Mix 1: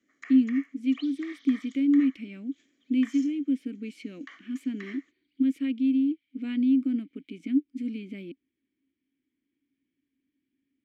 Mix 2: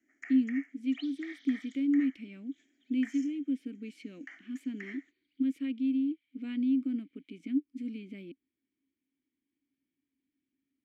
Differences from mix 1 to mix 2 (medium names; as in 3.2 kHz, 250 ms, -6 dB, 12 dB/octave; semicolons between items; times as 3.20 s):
speech -5.5 dB; first sound: add static phaser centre 750 Hz, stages 8; second sound: add treble shelf 4.2 kHz -5 dB